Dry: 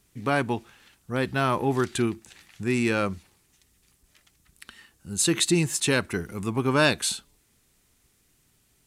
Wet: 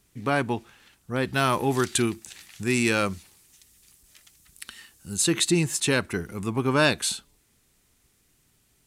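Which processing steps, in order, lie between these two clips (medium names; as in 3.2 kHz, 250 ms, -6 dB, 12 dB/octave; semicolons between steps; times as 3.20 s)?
1.33–5.17 s: treble shelf 3 kHz +10 dB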